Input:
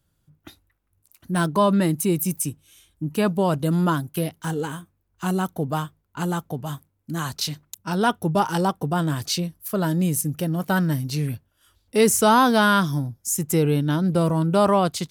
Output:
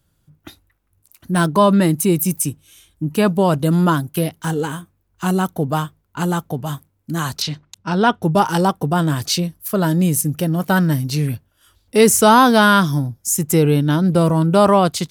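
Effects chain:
0:07.42–0:08.23: low-pass filter 4,800 Hz 12 dB per octave
level +5.5 dB

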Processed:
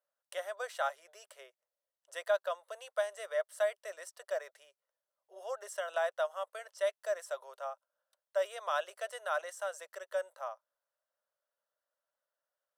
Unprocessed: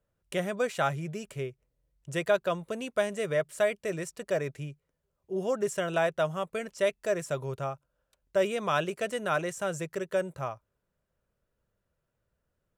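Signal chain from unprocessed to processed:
elliptic high-pass filter 570 Hz, stop band 60 dB
parametric band 2,400 Hz −12 dB 0.29 octaves
notch filter 7,000 Hz, Q 8
level −4.5 dB

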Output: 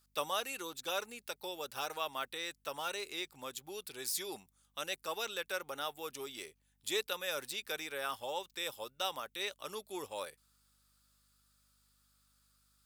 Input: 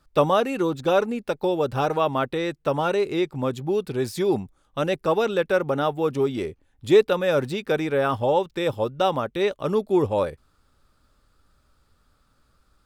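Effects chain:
first difference
mains hum 50 Hz, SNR 35 dB
level +2 dB

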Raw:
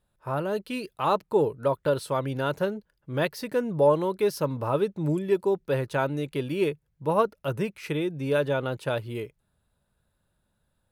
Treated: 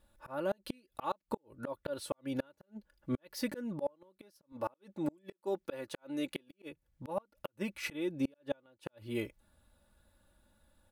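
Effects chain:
0:04.52–0:06.52: high-pass filter 290 Hz 6 dB per octave
comb filter 3.5 ms, depth 69%
volume swells 580 ms
gate with flip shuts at −26 dBFS, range −35 dB
level +3.5 dB

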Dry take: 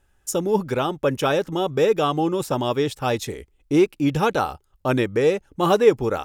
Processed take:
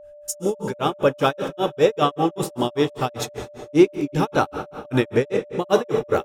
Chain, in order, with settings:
dense smooth reverb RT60 2.4 s, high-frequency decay 0.8×, pre-delay 0 ms, DRR 7 dB
granular cloud 160 ms, grains 5.1 per second, spray 12 ms, pitch spread up and down by 0 semitones
steady tone 590 Hz −45 dBFS
level +3.5 dB

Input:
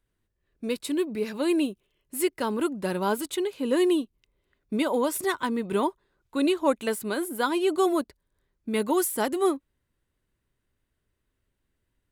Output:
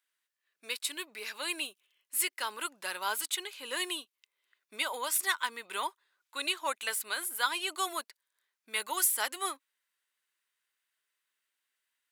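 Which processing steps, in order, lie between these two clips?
high-pass filter 1,500 Hz 12 dB per octave
level +3 dB

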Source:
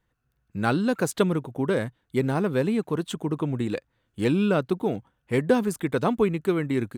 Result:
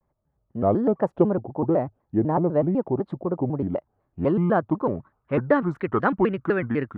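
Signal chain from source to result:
low-pass filter sweep 750 Hz → 1,500 Hz, 0:03.58–0:06.08
pitch modulation by a square or saw wave square 4 Hz, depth 250 cents

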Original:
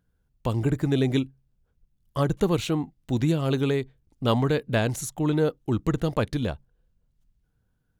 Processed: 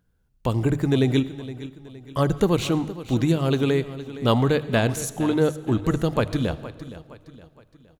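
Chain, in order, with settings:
mains-hum notches 50/100/150 Hz
repeating echo 466 ms, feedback 42%, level −15 dB
convolution reverb RT60 1.2 s, pre-delay 40 ms, DRR 16.5 dB
level +3 dB

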